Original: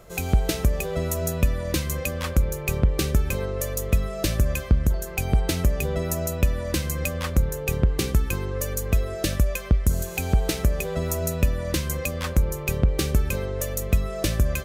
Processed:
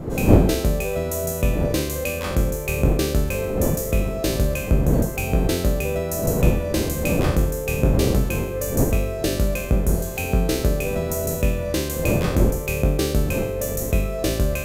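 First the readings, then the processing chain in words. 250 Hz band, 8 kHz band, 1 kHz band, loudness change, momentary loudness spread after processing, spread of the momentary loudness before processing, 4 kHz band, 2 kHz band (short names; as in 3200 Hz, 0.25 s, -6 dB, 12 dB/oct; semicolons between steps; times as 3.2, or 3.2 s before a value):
+6.5 dB, +2.0 dB, +4.0 dB, +3.0 dB, 5 LU, 5 LU, +1.5 dB, +2.0 dB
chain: spectral trails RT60 0.82 s; wind noise 200 Hz -24 dBFS; bell 540 Hz +7.5 dB 1.2 oct; gain -3 dB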